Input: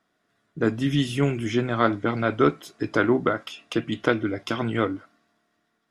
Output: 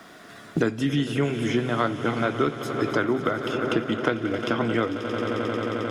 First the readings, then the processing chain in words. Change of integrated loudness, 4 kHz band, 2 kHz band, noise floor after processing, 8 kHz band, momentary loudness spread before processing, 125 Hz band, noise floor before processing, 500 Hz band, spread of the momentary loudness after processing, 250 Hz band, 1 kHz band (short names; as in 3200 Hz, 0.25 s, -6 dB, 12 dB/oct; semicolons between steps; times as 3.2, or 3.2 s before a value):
-1.0 dB, +0.5 dB, 0.0 dB, -46 dBFS, +0.5 dB, 7 LU, -1.0 dB, -73 dBFS, 0.0 dB, 4 LU, 0.0 dB, 0.0 dB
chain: low shelf 110 Hz -4.5 dB; swelling echo 89 ms, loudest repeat 5, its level -17 dB; in parallel at -10 dB: crossover distortion -45 dBFS; on the sum: three-band squash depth 100%; gain -4 dB